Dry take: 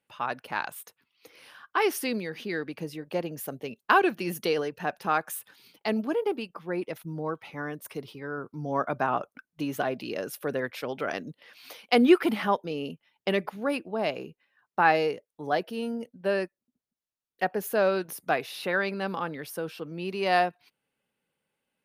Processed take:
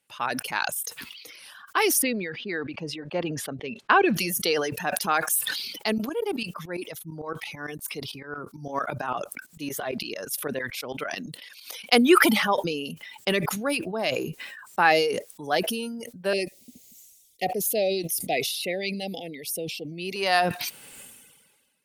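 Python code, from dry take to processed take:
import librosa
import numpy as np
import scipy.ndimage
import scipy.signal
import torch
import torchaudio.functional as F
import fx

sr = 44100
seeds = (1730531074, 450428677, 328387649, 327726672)

y = fx.lowpass(x, sr, hz=2600.0, slope=12, at=(2.02, 4.16))
y = fx.tremolo_shape(y, sr, shape='saw_up', hz=8.9, depth_pct=80, at=(5.98, 11.86))
y = fx.cheby1_bandstop(y, sr, low_hz=750.0, high_hz=2000.0, order=4, at=(16.33, 20.16))
y = fx.dereverb_blind(y, sr, rt60_s=0.96)
y = fx.peak_eq(y, sr, hz=9200.0, db=13.0, octaves=2.7)
y = fx.sustainer(y, sr, db_per_s=39.0)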